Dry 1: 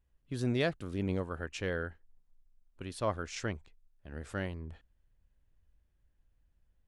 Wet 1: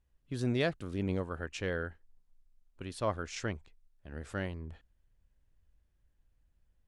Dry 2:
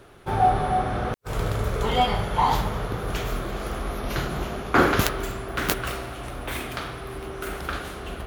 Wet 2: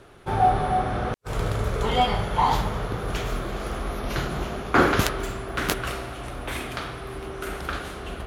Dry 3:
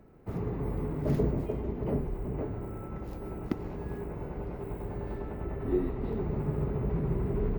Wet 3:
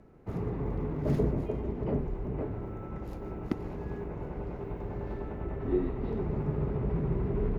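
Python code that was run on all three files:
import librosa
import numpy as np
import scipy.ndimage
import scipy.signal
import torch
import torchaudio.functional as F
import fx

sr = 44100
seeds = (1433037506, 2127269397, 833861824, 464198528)

y = scipy.signal.sosfilt(scipy.signal.butter(2, 12000.0, 'lowpass', fs=sr, output='sos'), x)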